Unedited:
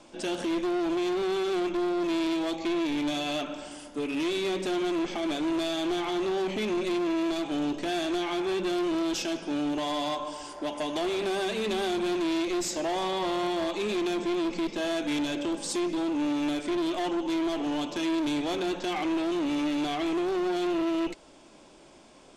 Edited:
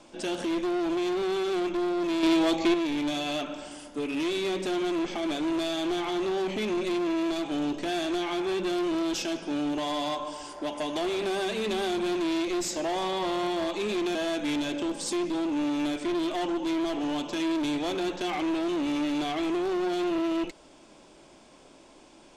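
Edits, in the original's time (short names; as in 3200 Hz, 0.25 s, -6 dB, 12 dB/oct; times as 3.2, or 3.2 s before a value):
2.23–2.74 gain +6 dB
14.15–14.78 cut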